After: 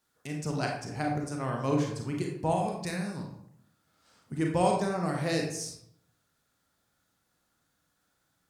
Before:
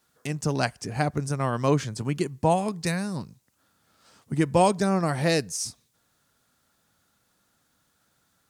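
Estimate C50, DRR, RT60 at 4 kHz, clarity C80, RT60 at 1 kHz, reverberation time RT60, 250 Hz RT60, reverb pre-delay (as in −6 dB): 4.0 dB, 0.0 dB, 0.45 s, 7.0 dB, 0.70 s, 0.70 s, 0.85 s, 30 ms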